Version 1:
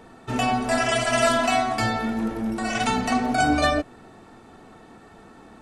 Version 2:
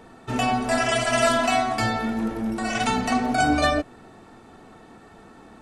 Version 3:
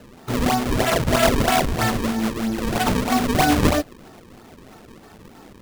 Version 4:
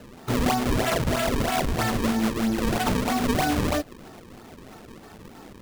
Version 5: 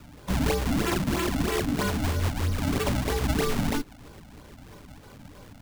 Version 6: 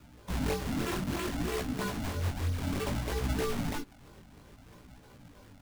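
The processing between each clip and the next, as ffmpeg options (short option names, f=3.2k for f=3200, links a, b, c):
-af anull
-af "acrusher=samples=36:mix=1:aa=0.000001:lfo=1:lforange=57.6:lforate=3.1,volume=3dB"
-af "alimiter=limit=-16dB:level=0:latency=1:release=139"
-af "afreqshift=-310,volume=-2dB"
-af "flanger=delay=15.5:depth=7.5:speed=0.6,volume=-4dB"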